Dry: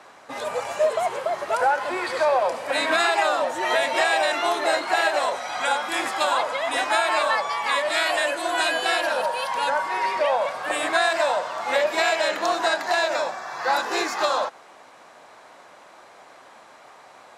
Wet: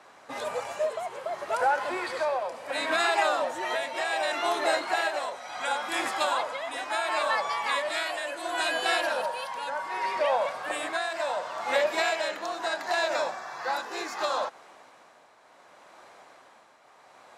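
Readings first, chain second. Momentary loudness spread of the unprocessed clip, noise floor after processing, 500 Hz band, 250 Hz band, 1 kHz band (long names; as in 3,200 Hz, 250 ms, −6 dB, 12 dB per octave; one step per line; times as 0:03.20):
6 LU, −56 dBFS, −6.0 dB, −6.0 dB, −6.0 dB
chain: shaped tremolo triangle 0.7 Hz, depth 60%
level −3 dB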